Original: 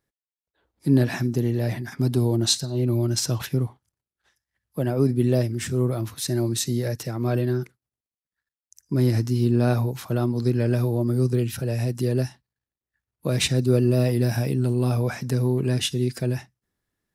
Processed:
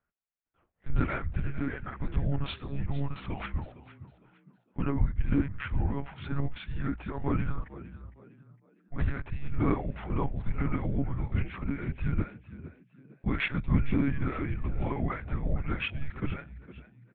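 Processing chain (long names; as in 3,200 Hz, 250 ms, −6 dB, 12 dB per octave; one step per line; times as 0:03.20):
single-sideband voice off tune −320 Hz 300–2,900 Hz
one-pitch LPC vocoder at 8 kHz 140 Hz
echo with shifted repeats 458 ms, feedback 31%, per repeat +59 Hz, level −16.5 dB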